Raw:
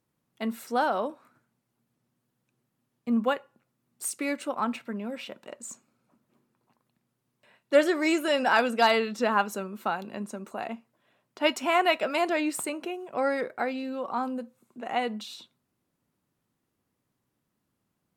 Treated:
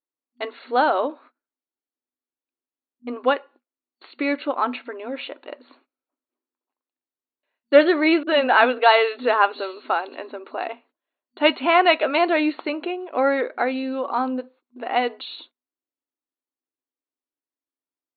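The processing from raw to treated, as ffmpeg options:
-filter_complex "[0:a]asettb=1/sr,asplit=3[s0][s1][s2];[s0]atrim=end=8.234[s3];[s1]atrim=start=8.23:end=10.29,asetpts=PTS-STARTPTS,afade=t=in:d=0.004:c=qsin,afade=t=out:st=2.056:d=0.004:c=qsin,acrossover=split=230|5300[s4][s5][s6];[s5]adelay=40[s7];[s6]adelay=740[s8];[s4][s7][s8]amix=inputs=3:normalize=0,atrim=end_sample=90846[s9];[s2]atrim=start=10.286[s10];[s3][s9]acrossfade=d=0.004:c1=hsin:c2=qsin[s11];[s11][s10]acrossfade=d=0.004:c1=qsin:c2=hsin,agate=range=0.0562:threshold=0.002:ratio=16:detection=peak,afftfilt=real='re*between(b*sr/4096,240,4500)':imag='im*between(b*sr/4096,240,4500)':win_size=4096:overlap=0.75,volume=2.24"

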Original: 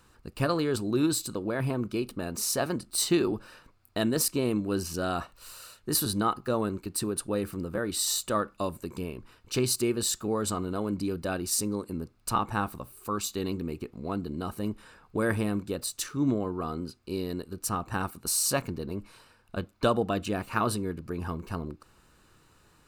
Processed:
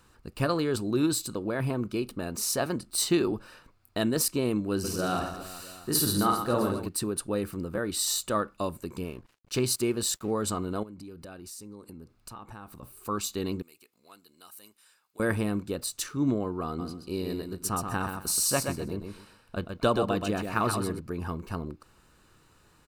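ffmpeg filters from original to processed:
-filter_complex "[0:a]asplit=3[s0][s1][s2];[s0]afade=t=out:st=4.83:d=0.02[s3];[s1]aecho=1:1:50|125|237.5|406.2|659.4:0.631|0.398|0.251|0.158|0.1,afade=t=in:st=4.83:d=0.02,afade=t=out:st=6.87:d=0.02[s4];[s2]afade=t=in:st=6.87:d=0.02[s5];[s3][s4][s5]amix=inputs=3:normalize=0,asettb=1/sr,asplit=3[s6][s7][s8];[s6]atrim=end=9.044[s9];[s7]atrim=start=9.04:end=10.31,asetpts=PTS-STARTPTS,afade=t=in:d=0.004:c=qsin,afade=t=out:st=1.266:d=0.004:c=qsin,aeval=exprs='sgn(val(0))*max(abs(val(0))-0.00224,0)':c=same[s10];[s8]atrim=start=10.306[s11];[s9][s10]acrossfade=d=0.004:c1=hsin:c2=qsin[s12];[s12][s11]acrossfade=d=0.004:c1=qsin:c2=hsin,asettb=1/sr,asplit=3[s13][s14][s15];[s13]atrim=end=10.834[s16];[s14]atrim=start=10.83:end=12.83,asetpts=PTS-STARTPTS,afade=t=in:d=0.004:c=qsin,afade=t=out:st=1.996:d=0.004:c=qsin,acompressor=threshold=0.00794:ratio=5:attack=3.2:release=140:knee=1:detection=peak[s17];[s15]atrim=start=12.826[s18];[s16][s17]acrossfade=d=0.004:c1=hsin:c2=qsin[s19];[s19][s18]acrossfade=d=0.004:c1=qsin:c2=hsin,asettb=1/sr,asplit=3[s20][s21][s22];[s20]atrim=end=13.624[s23];[s21]atrim=start=13.62:end=15.2,asetpts=PTS-STARTPTS,afade=t=in:d=0.004:c=qsin,afade=t=out:st=1.576:d=0.004:c=qsin,aderivative[s24];[s22]atrim=start=15.196[s25];[s23][s24]acrossfade=d=0.004:c1=hsin:c2=qsin[s26];[s26][s25]acrossfade=d=0.004:c1=qsin:c2=hsin,asplit=3[s27][s28][s29];[s27]afade=t=out:st=16.78:d=0.02[s30];[s28]aecho=1:1:127|254|381:0.501|0.11|0.0243,afade=t=in:st=16.78:d=0.02,afade=t=out:st=20.98:d=0.02[s31];[s29]afade=t=in:st=20.98:d=0.02[s32];[s30][s31][s32]amix=inputs=3:normalize=0"

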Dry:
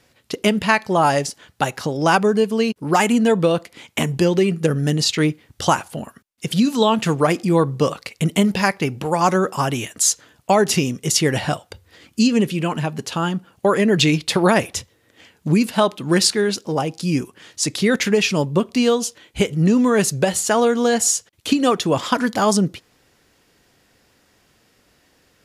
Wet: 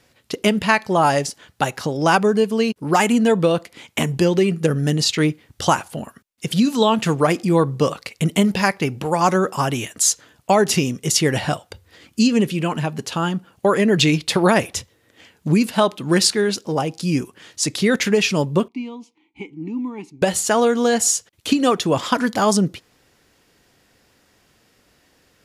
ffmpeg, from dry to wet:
-filter_complex "[0:a]asettb=1/sr,asplit=3[s0][s1][s2];[s0]atrim=end=18.684[s3];[s1]atrim=start=18.68:end=20.22,asetpts=PTS-STARTPTS,afade=t=in:d=0.004:c=qsin,afade=t=out:st=1.536:d=0.004:c=qsin,asplit=3[s4][s5][s6];[s4]bandpass=f=300:t=q:w=8,volume=1[s7];[s5]bandpass=f=870:t=q:w=8,volume=0.501[s8];[s6]bandpass=f=2240:t=q:w=8,volume=0.355[s9];[s7][s8][s9]amix=inputs=3:normalize=0[s10];[s2]atrim=start=20.216[s11];[s3][s10]acrossfade=d=0.004:c1=hsin:c2=qsin[s12];[s12][s11]acrossfade=d=0.004:c1=qsin:c2=hsin"

